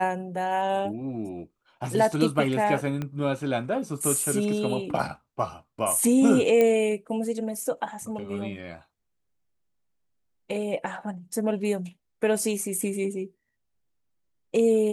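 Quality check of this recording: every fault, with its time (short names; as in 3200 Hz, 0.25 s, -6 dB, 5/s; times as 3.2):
3.02 pop -19 dBFS
6.61 pop -11 dBFS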